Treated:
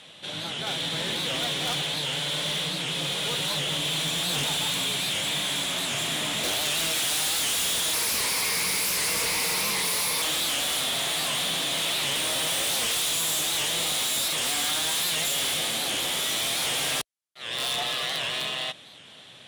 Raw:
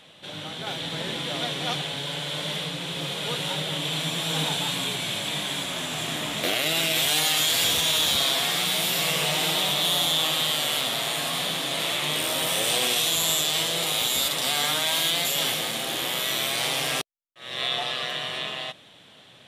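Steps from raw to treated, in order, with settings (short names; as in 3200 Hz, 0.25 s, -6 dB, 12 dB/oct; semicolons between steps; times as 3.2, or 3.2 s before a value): 7.93–10.22 ripple EQ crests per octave 0.87, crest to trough 17 dB; wrapped overs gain 16.5 dB; Chebyshev low-pass 11000 Hz, order 3; high shelf 2200 Hz +6.5 dB; overloaded stage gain 24.5 dB; HPF 42 Hz; record warp 78 rpm, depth 160 cents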